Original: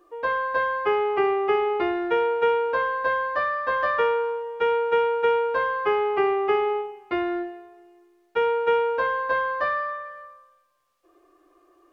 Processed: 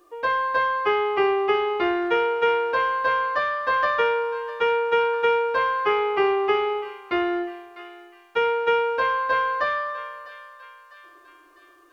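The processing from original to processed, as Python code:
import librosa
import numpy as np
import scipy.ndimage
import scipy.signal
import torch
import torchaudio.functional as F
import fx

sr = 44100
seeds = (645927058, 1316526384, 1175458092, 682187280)

y = fx.high_shelf(x, sr, hz=2500.0, db=9.0)
y = fx.doubler(y, sr, ms=20.0, db=-13.0)
y = fx.echo_thinned(y, sr, ms=651, feedback_pct=56, hz=1000.0, wet_db=-14.5)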